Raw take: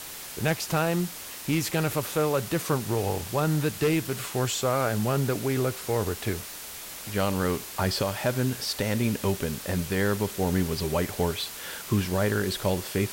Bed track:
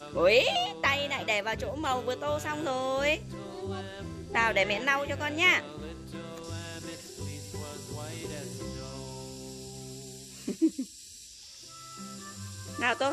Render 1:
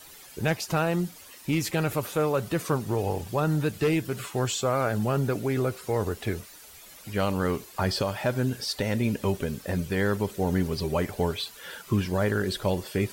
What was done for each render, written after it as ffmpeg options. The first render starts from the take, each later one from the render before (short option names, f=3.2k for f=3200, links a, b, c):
-af "afftdn=nr=12:nf=-40"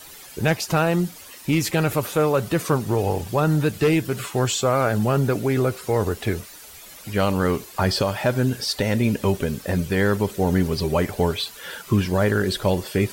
-af "acontrast=42"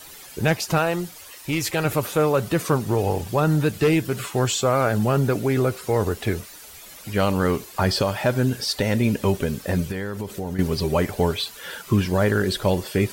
-filter_complex "[0:a]asettb=1/sr,asplit=3[a][b][c];[a]atrim=end=0.784[d];[b]atrim=start=0.78:end=1.85,asetpts=PTS-STARTPTS,afade=t=in:d=0.004:c=qsin,afade=t=out:st=1.066:d=0.004:c=qsin,equalizer=f=210:w=1.5:g=-10.5[e];[c]atrim=start=1.846[f];[d][e]acrossfade=d=0.004:c1=hsin:c2=qsin[g];[g][f]acrossfade=d=0.004:c1=qsin:c2=hsin,asettb=1/sr,asplit=3[h][i][j];[h]atrim=end=9.914[k];[i]atrim=start=9.91:end=10.59,asetpts=PTS-STARTPTS,afade=t=in:d=0.004:c=qsin,afade=t=out:st=0.676:d=0.004:c=qsin,acompressor=threshold=-25dB:ratio=6:attack=3.2:release=140:knee=1:detection=peak[l];[j]atrim=start=10.586[m];[k][l]acrossfade=d=0.004:c1=hsin:c2=qsin[n];[n][m]acrossfade=d=0.004:c1=qsin:c2=hsin"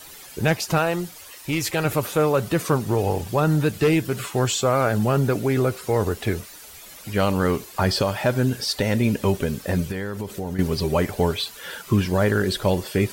-af anull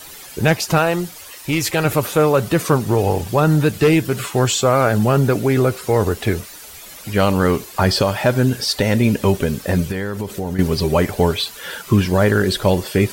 -af "volume=5dB"